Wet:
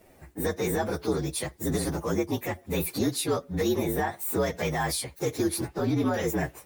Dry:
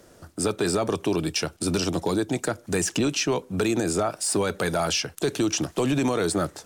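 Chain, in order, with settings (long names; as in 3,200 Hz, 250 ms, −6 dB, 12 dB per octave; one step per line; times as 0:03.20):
partials spread apart or drawn together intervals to 118%
0:05.68–0:06.14: high-shelf EQ 4,400 Hz −11 dB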